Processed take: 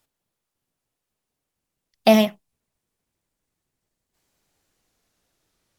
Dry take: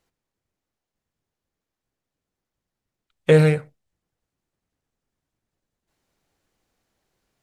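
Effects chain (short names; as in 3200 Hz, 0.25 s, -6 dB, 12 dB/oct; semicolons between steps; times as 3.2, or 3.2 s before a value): speed glide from 176% -> 81%; high shelf 3900 Hz +7.5 dB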